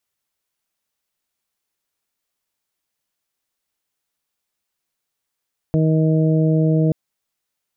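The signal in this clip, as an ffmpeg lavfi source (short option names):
-f lavfi -i "aevalsrc='0.188*sin(2*PI*158*t)+0.0944*sin(2*PI*316*t)+0.0668*sin(2*PI*474*t)+0.0473*sin(2*PI*632*t)':d=1.18:s=44100"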